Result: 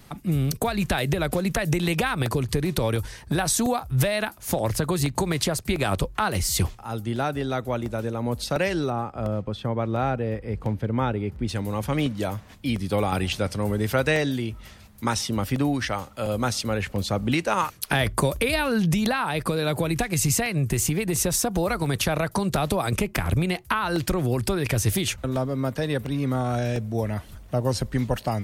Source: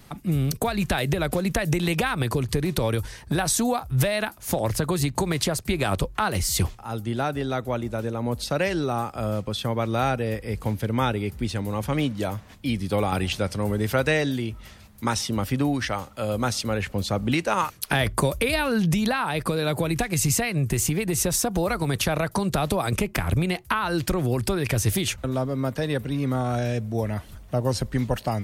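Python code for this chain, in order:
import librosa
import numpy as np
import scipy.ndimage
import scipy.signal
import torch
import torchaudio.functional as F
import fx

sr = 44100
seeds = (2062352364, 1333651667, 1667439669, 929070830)

y = fx.lowpass(x, sr, hz=1300.0, slope=6, at=(8.89, 11.47), fade=0.02)
y = fx.buffer_crackle(y, sr, first_s=0.86, period_s=0.7, block=64, kind='repeat')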